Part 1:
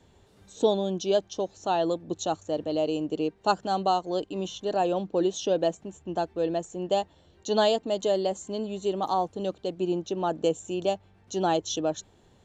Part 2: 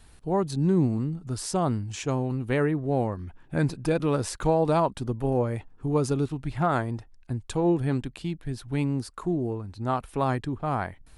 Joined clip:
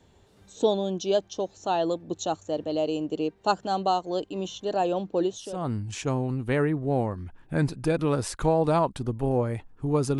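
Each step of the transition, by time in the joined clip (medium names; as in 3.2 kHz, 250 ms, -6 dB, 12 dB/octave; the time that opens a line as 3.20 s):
part 1
5.50 s: go over to part 2 from 1.51 s, crossfade 0.56 s quadratic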